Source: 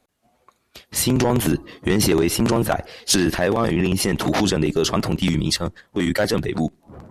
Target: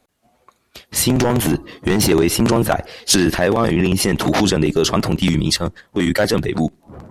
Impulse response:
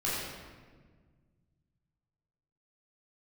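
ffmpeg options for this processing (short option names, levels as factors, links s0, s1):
-filter_complex "[0:a]asettb=1/sr,asplit=3[s0][s1][s2];[s0]atrim=end=1.114[s3];[s1]atrim=start=1.11:end=2.1,asetpts=PTS-STARTPTS,afade=t=in:d=0.004:c=qsin,afade=t=out:st=0.986:d=0.004:c=qsin,asoftclip=type=hard:threshold=0.211[s4];[s2]atrim=start=2.096[s5];[s3][s4]acrossfade=d=0.004:c1=hsin:c2=qsin[s6];[s6][s5]acrossfade=d=0.004:c1=qsin:c2=hsin,volume=1.5"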